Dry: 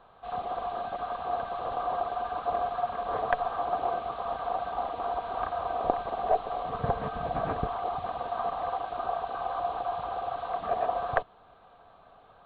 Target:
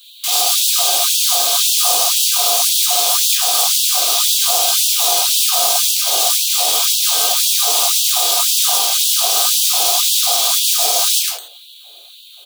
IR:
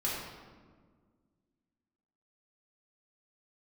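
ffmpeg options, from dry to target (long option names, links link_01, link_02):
-filter_complex "[0:a]bass=frequency=250:gain=-6,treble=frequency=4000:gain=15,acompressor=threshold=-29dB:ratio=6,asplit=2[link_01][link_02];[link_02]adelay=107,lowpass=frequency=1800:poles=1,volume=-8dB,asplit=2[link_03][link_04];[link_04]adelay=107,lowpass=frequency=1800:poles=1,volume=0.3,asplit=2[link_05][link_06];[link_06]adelay=107,lowpass=frequency=1800:poles=1,volume=0.3,asplit=2[link_07][link_08];[link_08]adelay=107,lowpass=frequency=1800:poles=1,volume=0.3[link_09];[link_01][link_03][link_05][link_07][link_09]amix=inputs=5:normalize=0,acrossover=split=280|610|2100[link_10][link_11][link_12][link_13];[link_12]acrusher=bits=6:mix=0:aa=0.000001[link_14];[link_10][link_11][link_14][link_13]amix=inputs=4:normalize=0,aexciter=amount=13:drive=4.6:freq=2800[link_15];[1:a]atrim=start_sample=2205,afade=type=out:start_time=0.14:duration=0.01,atrim=end_sample=6615[link_16];[link_15][link_16]afir=irnorm=-1:irlink=0,afftfilt=real='re*gte(b*sr/1024,260*pow(2600/260,0.5+0.5*sin(2*PI*1.9*pts/sr)))':imag='im*gte(b*sr/1024,260*pow(2600/260,0.5+0.5*sin(2*PI*1.9*pts/sr)))':win_size=1024:overlap=0.75,volume=6dB"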